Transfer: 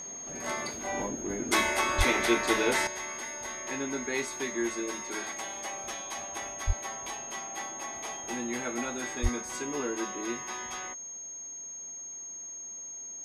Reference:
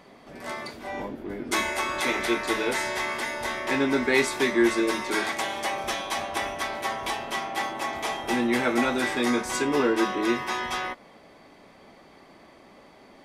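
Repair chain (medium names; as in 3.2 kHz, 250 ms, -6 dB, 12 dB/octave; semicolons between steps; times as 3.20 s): band-stop 6.5 kHz, Q 30; 1.97–2.09 s: high-pass 140 Hz 24 dB/octave; 2.87 s: gain correction +10.5 dB; 6.66–6.78 s: high-pass 140 Hz 24 dB/octave; 9.22–9.34 s: high-pass 140 Hz 24 dB/octave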